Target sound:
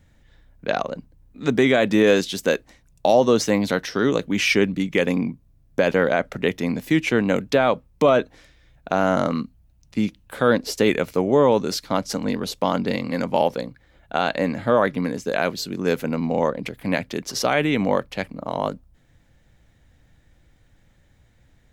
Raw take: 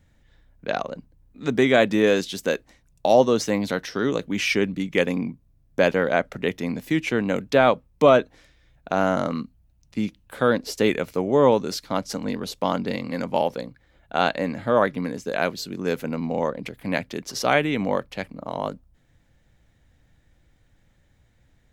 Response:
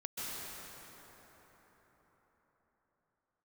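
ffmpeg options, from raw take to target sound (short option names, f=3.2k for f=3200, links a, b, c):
-af "alimiter=limit=-9.5dB:level=0:latency=1:release=50,volume=3.5dB"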